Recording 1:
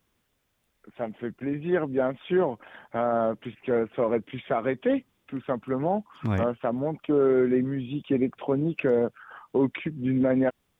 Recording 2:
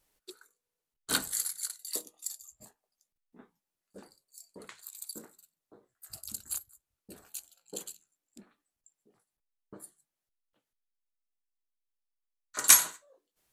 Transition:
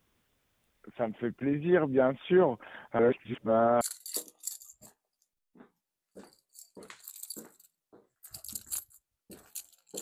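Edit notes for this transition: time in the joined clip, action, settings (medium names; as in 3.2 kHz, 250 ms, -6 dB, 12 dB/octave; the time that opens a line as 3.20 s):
recording 1
2.99–3.81 s: reverse
3.81 s: go over to recording 2 from 1.60 s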